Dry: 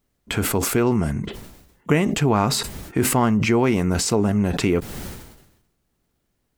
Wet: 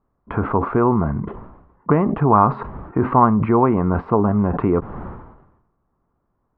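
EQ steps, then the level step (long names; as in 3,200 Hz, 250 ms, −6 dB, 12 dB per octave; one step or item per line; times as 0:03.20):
low-pass with resonance 1,100 Hz, resonance Q 3.8
high-frequency loss of the air 460 metres
+2.0 dB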